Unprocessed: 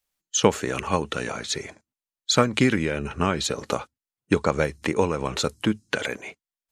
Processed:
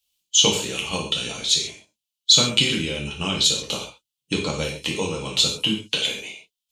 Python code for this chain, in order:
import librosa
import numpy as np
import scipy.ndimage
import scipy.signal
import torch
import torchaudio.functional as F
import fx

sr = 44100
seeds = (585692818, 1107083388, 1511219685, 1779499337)

y = fx.high_shelf_res(x, sr, hz=2300.0, db=10.0, q=3.0)
y = fx.rev_gated(y, sr, seeds[0], gate_ms=170, shape='falling', drr_db=-1.5)
y = F.gain(torch.from_numpy(y), -7.5).numpy()